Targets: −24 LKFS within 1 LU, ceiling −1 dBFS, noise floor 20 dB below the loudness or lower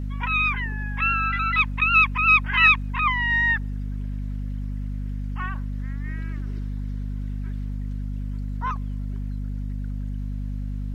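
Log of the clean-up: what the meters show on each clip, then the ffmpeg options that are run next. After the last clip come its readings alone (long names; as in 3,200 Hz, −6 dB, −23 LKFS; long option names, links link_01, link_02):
mains hum 50 Hz; hum harmonics up to 250 Hz; level of the hum −26 dBFS; integrated loudness −23.5 LKFS; sample peak −4.5 dBFS; target loudness −24.0 LKFS
→ -af "bandreject=frequency=50:width_type=h:width=6,bandreject=frequency=100:width_type=h:width=6,bandreject=frequency=150:width_type=h:width=6,bandreject=frequency=200:width_type=h:width=6,bandreject=frequency=250:width_type=h:width=6"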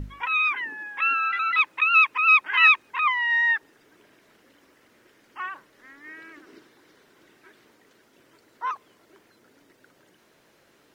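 mains hum none found; integrated loudness −20.0 LKFS; sample peak −5.0 dBFS; target loudness −24.0 LKFS
→ -af "volume=-4dB"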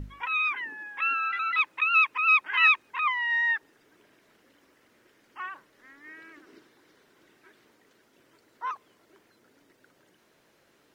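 integrated loudness −24.0 LKFS; sample peak −9.0 dBFS; background noise floor −65 dBFS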